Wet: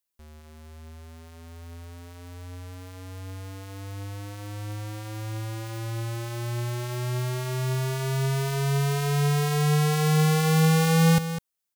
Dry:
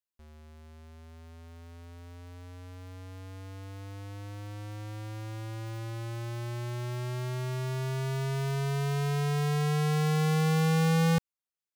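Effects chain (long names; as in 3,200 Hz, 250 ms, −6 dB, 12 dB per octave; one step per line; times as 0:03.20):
high-shelf EQ 6,400 Hz +8 dB
on a send: single-tap delay 202 ms −10.5 dB
on the sum: level +4.5 dB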